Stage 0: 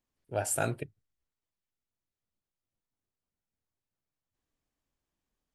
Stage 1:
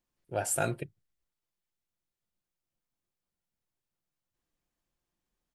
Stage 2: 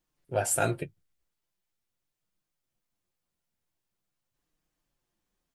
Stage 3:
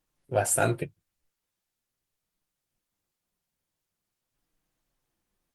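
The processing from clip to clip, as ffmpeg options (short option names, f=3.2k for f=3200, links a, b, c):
-af "aecho=1:1:5.7:0.33"
-af "flanger=delay=6.3:depth=6.5:regen=-27:speed=0.43:shape=sinusoidal,volume=7dB"
-af "volume=3dB" -ar 48000 -c:a libopus -b:a 24k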